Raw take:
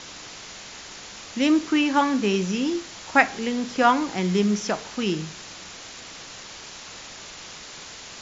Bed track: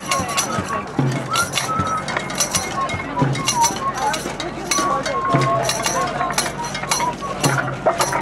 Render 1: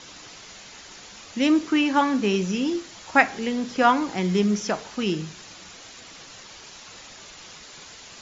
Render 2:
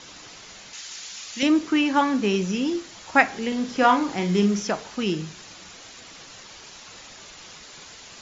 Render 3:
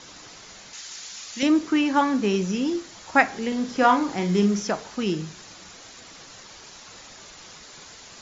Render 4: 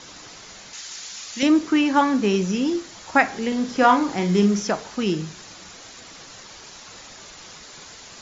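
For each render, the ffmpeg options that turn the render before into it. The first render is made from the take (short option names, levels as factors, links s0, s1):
-af "afftdn=nr=6:nf=-41"
-filter_complex "[0:a]asettb=1/sr,asplit=3[s0][s1][s2];[s0]atrim=end=0.734[s3];[s1]atrim=start=0.73:end=1.43,asetpts=PTS-STARTPTS,afade=t=in:d=0.004:c=qsin,afade=t=out:st=0.696:d=0.004:c=qsin,tiltshelf=f=1400:g=-9[s4];[s2]atrim=start=1.426[s5];[s3][s4]acrossfade=d=0.004:c1=hsin:c2=qsin[s6];[s6][s5]acrossfade=d=0.004:c1=qsin:c2=hsin,asettb=1/sr,asplit=3[s7][s8][s9];[s7]atrim=end=3.484[s10];[s8]atrim=start=3.48:end=4.63,asetpts=PTS-STARTPTS,afade=t=in:d=0.004:c=qsin,afade=t=out:st=1.146:d=0.004:c=qsin,asplit=2[s11][s12];[s12]adelay=40,volume=0.447[s13];[s11][s13]amix=inputs=2:normalize=0,atrim=end_sample=50715[s14];[s9]atrim=start=4.626[s15];[s10][s14]acrossfade=d=0.004:c1=hsin:c2=qsin[s16];[s16][s15]acrossfade=d=0.004:c1=qsin:c2=hsin"
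-af "equalizer=f=2800:t=o:w=0.79:g=-3.5"
-af "volume=1.33,alimiter=limit=0.708:level=0:latency=1"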